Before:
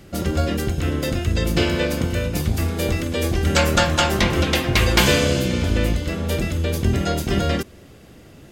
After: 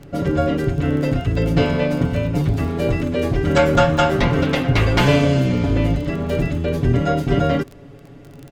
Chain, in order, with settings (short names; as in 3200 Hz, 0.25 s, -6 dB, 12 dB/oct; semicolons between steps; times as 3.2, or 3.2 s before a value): LPF 1100 Hz 6 dB/oct; comb 7.1 ms, depth 96%; crackle 20/s -30 dBFS; gain +2 dB